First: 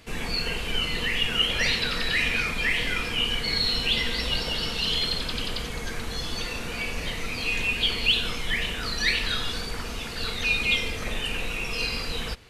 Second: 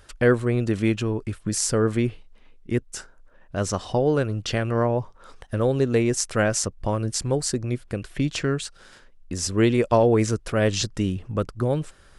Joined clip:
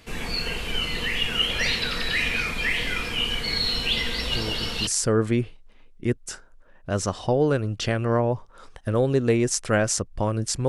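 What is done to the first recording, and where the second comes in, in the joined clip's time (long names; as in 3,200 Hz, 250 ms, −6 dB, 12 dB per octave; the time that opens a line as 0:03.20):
first
0:04.30: mix in second from 0:00.96 0.57 s −7 dB
0:04.87: continue with second from 0:01.53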